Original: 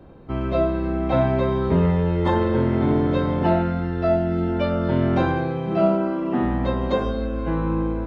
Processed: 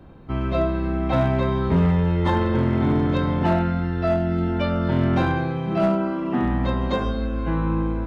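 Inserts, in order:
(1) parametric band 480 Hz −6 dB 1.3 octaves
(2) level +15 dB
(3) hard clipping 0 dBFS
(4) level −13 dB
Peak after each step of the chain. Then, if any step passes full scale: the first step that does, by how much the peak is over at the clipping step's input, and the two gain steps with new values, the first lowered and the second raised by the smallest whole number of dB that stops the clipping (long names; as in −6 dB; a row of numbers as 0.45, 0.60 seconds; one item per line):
−9.0, +6.0, 0.0, −13.0 dBFS
step 2, 6.0 dB
step 2 +9 dB, step 4 −7 dB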